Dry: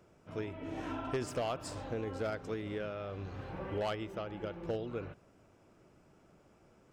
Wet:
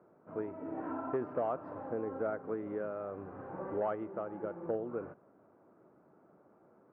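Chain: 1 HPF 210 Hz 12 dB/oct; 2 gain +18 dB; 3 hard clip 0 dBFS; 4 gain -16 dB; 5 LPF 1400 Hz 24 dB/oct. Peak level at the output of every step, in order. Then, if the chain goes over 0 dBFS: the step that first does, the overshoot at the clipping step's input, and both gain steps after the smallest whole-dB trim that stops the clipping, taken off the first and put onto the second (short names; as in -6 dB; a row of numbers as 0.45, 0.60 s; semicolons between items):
-23.0, -5.0, -5.0, -21.0, -22.5 dBFS; no overload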